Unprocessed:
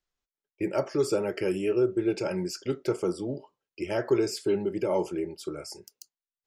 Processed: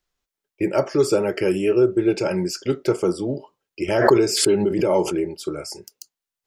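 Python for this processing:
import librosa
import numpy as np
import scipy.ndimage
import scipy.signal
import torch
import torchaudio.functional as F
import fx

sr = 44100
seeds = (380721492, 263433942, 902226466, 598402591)

y = fx.pre_swell(x, sr, db_per_s=50.0, at=(3.88, 5.31))
y = y * librosa.db_to_amplitude(7.5)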